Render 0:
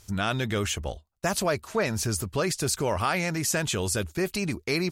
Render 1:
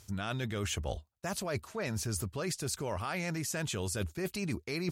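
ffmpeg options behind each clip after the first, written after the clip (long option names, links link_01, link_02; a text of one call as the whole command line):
ffmpeg -i in.wav -af "areverse,acompressor=threshold=-34dB:ratio=12,areverse,highpass=69,lowshelf=frequency=120:gain=6,volume=1.5dB" out.wav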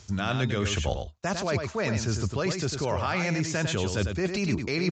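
ffmpeg -i in.wav -filter_complex "[0:a]acrossover=split=220|4000[link_01][link_02][link_03];[link_03]asoftclip=type=tanh:threshold=-38.5dB[link_04];[link_01][link_02][link_04]amix=inputs=3:normalize=0,aecho=1:1:100:0.473,aresample=16000,aresample=44100,volume=7.5dB" out.wav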